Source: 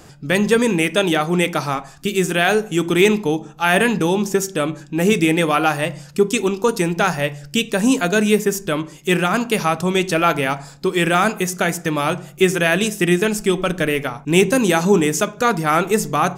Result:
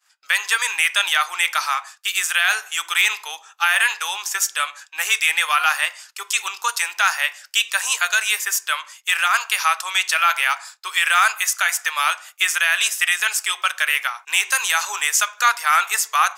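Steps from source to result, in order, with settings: expander -32 dBFS; inverse Chebyshev high-pass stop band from 250 Hz, stop band 70 dB; limiter -10 dBFS, peak gain reduction 6 dB; gain +5.5 dB

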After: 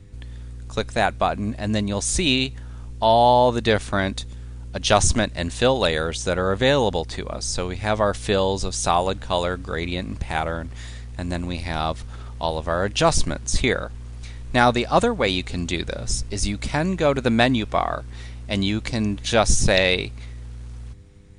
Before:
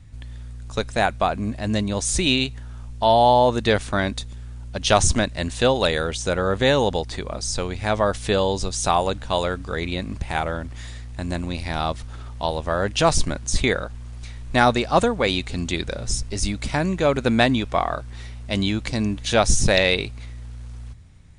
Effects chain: buzz 100 Hz, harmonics 5, -54 dBFS

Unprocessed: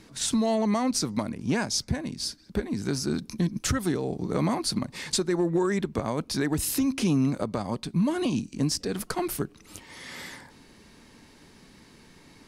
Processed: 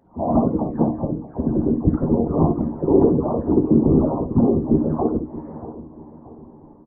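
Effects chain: spectral delay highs early, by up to 0.994 s; elliptic low-pass 920 Hz, stop band 80 dB; low shelf 150 Hz -4.5 dB; AGC gain up to 15 dB; whisperiser; resonator 78 Hz, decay 0.31 s, harmonics all, mix 70%; time stretch by phase-locked vocoder 0.55×; feedback echo 0.631 s, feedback 39%, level -16 dB; reverb, pre-delay 46 ms, DRR 7 dB; gain +5.5 dB

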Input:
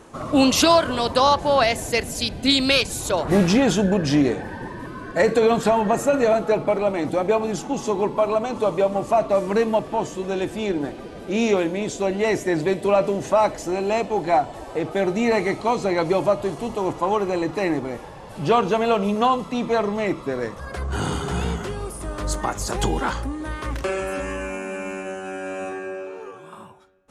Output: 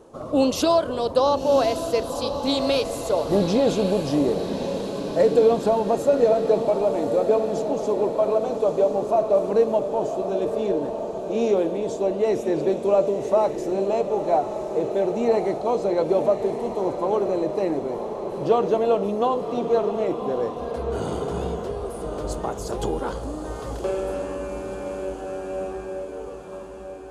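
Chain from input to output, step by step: graphic EQ 500/2000/8000 Hz +9/-9/-3 dB; diffused feedback echo 1.097 s, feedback 60%, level -8 dB; gain -6.5 dB

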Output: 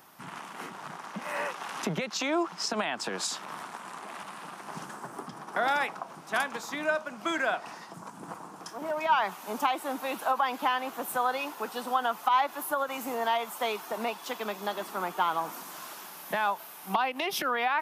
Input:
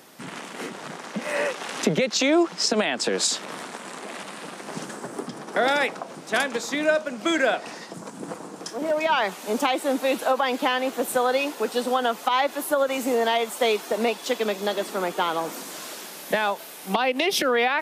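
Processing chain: graphic EQ 125/250/500/1000/2000/4000/8000 Hz -3/-8/-12/+4/-6/-7/-9 dB

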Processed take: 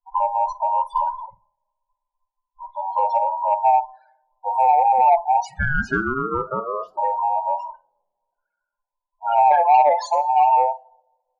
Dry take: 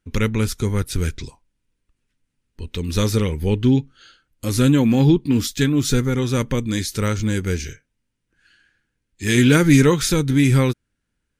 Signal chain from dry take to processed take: band inversion scrambler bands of 1000 Hz; loudest bins only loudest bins 8; 5.44–6.96 ring modulator 940 Hz -> 260 Hz; bell 11000 Hz +14 dB 0.69 oct; doubler 47 ms -14 dB; two-slope reverb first 0.63 s, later 2.6 s, from -20 dB, DRR 19.5 dB; soft clip -5.5 dBFS, distortion -23 dB; low-pass opened by the level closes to 410 Hz, open at -13.5 dBFS

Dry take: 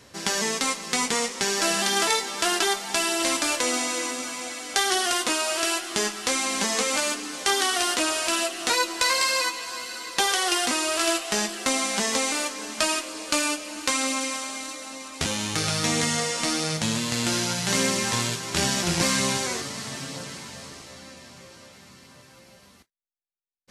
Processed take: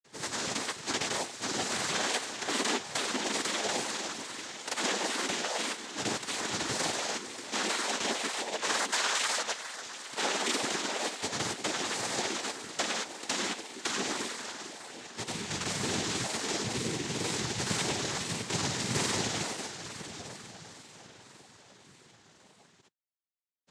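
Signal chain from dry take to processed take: grains; noise vocoder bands 6; wow and flutter 96 cents; gain -5.5 dB

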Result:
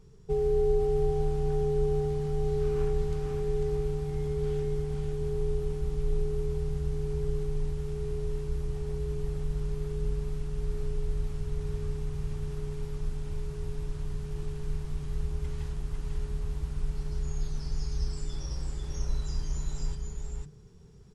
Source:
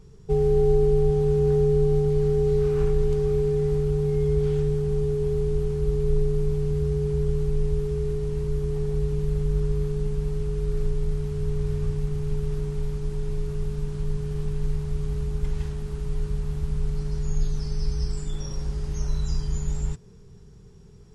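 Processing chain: notches 50/100/150/200/250/300 Hz; echo 0.497 s -3.5 dB; gain -5 dB

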